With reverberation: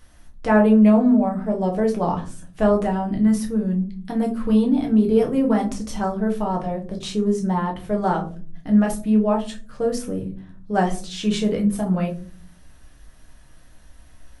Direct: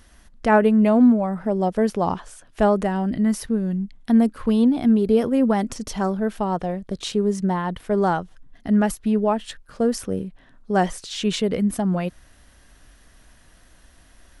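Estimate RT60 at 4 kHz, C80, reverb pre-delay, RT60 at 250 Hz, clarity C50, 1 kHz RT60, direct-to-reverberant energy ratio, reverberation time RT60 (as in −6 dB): 0.20 s, 18.0 dB, 6 ms, 0.85 s, 11.5 dB, 0.35 s, −0.5 dB, 0.40 s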